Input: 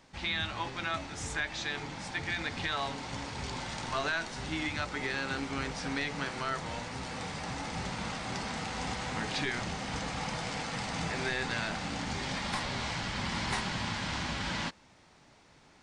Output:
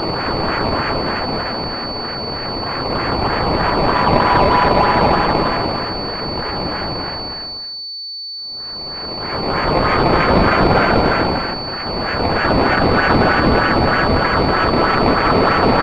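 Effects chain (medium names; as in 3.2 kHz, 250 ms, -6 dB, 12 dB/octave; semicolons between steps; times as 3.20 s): high-pass 1.1 kHz 12 dB/octave; compression 3:1, threshold -44 dBFS, peak gain reduction 11 dB; bit crusher 7-bit; Paulstretch 34×, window 0.05 s, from 0.48 s; decimation with a swept rate 19×, swing 100% 3.2 Hz; on a send: delay 238 ms -7.5 dB; on the sum: loudness maximiser +33 dB; class-D stage that switches slowly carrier 4.5 kHz; trim -2.5 dB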